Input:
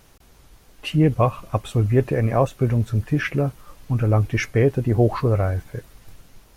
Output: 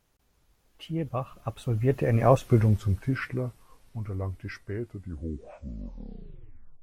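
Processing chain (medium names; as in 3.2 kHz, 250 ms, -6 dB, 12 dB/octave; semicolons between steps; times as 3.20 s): tape stop on the ending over 1.96 s; Doppler pass-by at 2.35 s, 29 m/s, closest 9.1 m; wide varispeed 0.962×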